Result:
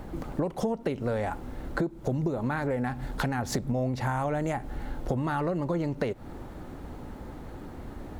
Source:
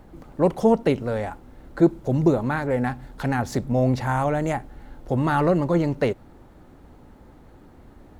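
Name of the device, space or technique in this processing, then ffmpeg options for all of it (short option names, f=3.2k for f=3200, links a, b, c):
serial compression, peaks first: -af "acompressor=threshold=-28dB:ratio=6,acompressor=threshold=-35dB:ratio=2.5,volume=7.5dB"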